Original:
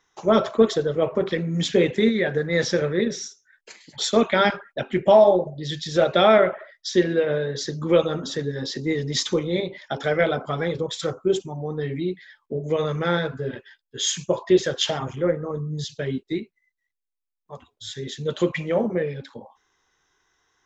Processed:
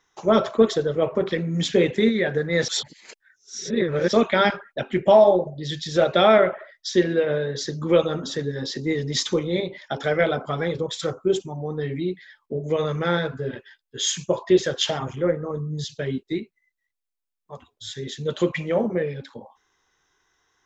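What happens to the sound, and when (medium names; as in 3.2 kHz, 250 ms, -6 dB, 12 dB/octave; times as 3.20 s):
2.68–4.13 s: reverse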